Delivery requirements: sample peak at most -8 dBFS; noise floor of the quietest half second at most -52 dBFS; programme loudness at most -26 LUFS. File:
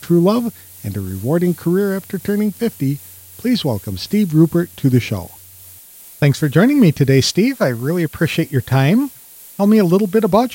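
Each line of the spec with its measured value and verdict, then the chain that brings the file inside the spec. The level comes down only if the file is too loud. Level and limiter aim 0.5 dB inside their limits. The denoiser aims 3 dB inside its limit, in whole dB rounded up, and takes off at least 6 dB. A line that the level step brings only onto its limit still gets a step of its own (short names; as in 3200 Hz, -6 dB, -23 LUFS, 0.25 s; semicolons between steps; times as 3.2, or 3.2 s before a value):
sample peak -1.5 dBFS: fail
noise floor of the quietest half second -41 dBFS: fail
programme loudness -16.5 LUFS: fail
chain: denoiser 6 dB, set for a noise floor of -41 dBFS; gain -10 dB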